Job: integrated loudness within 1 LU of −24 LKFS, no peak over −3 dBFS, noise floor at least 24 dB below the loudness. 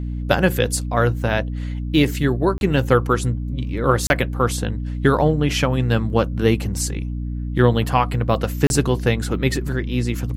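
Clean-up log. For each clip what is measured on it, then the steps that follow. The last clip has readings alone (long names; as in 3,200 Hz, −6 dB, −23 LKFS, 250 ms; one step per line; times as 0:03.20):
number of dropouts 3; longest dropout 31 ms; mains hum 60 Hz; hum harmonics up to 300 Hz; level of the hum −23 dBFS; integrated loudness −20.0 LKFS; sample peak −2.0 dBFS; target loudness −24.0 LKFS
→ repair the gap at 0:02.58/0:04.07/0:08.67, 31 ms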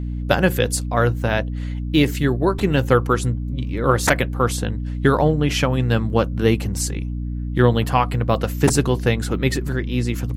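number of dropouts 0; mains hum 60 Hz; hum harmonics up to 300 Hz; level of the hum −23 dBFS
→ mains-hum notches 60/120/180/240/300 Hz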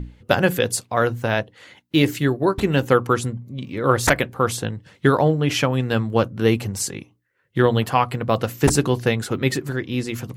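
mains hum none found; integrated loudness −21.0 LKFS; sample peak −2.5 dBFS; target loudness −24.0 LKFS
→ level −3 dB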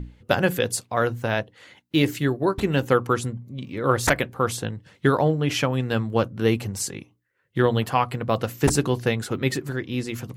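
integrated loudness −24.0 LKFS; sample peak −5.5 dBFS; background noise floor −67 dBFS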